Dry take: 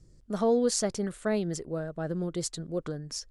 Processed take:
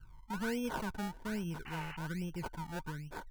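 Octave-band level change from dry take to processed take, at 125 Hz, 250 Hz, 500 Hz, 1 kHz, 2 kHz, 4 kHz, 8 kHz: −5.0, −7.5, −15.5, −2.5, +1.5, −10.5, −18.5 decibels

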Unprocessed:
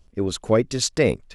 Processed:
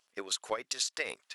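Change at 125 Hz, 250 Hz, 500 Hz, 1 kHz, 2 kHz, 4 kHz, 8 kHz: below −35 dB, −26.5 dB, −19.0 dB, −7.5 dB, −7.0 dB, −5.5 dB, −6.5 dB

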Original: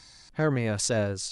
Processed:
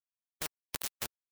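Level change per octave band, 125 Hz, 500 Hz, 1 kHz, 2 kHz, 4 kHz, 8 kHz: −27.5, −24.5, −12.5, −12.0, −8.0, −9.5 decibels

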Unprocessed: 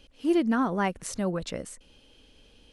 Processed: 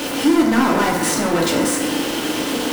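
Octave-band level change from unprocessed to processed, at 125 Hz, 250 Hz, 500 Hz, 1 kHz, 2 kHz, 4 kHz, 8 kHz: +8.0, +11.0, +11.0, +12.0, +15.0, +20.0, +18.0 decibels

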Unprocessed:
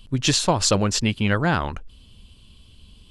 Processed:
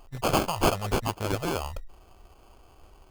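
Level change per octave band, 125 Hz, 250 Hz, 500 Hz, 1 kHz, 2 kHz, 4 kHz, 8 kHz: −8.5, −8.5, −3.5, −2.5, −8.5, −10.5, −12.5 decibels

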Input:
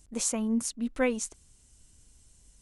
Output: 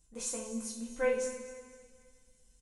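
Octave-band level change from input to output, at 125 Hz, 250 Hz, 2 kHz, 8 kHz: can't be measured, −11.5 dB, −3.5 dB, −6.5 dB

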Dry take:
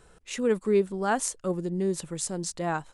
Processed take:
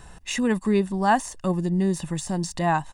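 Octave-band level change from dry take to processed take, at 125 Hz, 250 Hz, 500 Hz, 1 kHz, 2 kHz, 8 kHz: +8.0, +6.5, −0.5, +8.0, +6.0, −2.0 decibels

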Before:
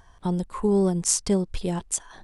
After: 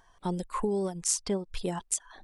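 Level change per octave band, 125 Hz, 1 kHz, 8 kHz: −9.5, −1.5, −4.5 decibels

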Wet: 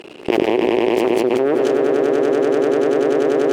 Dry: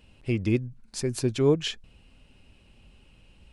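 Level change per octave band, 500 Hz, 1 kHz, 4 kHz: +16.0, +23.0, +5.0 decibels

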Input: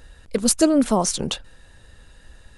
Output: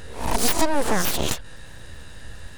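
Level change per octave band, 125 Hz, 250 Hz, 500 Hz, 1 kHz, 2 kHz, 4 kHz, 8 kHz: +1.0, −8.5, −3.5, +2.5, +8.0, 0.0, −3.0 decibels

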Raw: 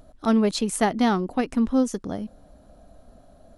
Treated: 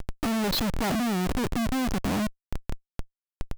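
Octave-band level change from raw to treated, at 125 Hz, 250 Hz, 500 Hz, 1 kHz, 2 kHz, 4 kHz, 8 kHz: +2.5, −4.5, −6.5, −4.5, +0.5, +2.5, −3.5 decibels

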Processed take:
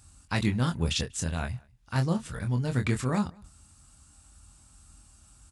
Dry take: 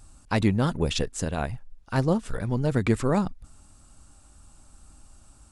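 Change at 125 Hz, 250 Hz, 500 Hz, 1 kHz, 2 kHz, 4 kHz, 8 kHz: −1.5, −4.0, −8.5, −4.5, −1.5, +0.5, +1.0 decibels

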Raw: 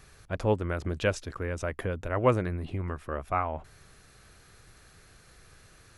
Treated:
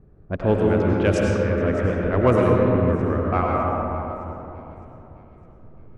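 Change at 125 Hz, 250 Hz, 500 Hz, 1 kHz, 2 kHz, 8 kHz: +10.0 dB, +13.5 dB, +10.5 dB, +8.0 dB, +6.5 dB, can't be measured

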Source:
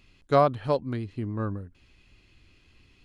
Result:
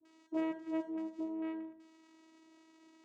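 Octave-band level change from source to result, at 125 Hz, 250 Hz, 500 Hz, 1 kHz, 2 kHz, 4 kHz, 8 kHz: below −35 dB, −4.0 dB, −17.0 dB, −21.5 dB, −12.0 dB, below −15 dB, can't be measured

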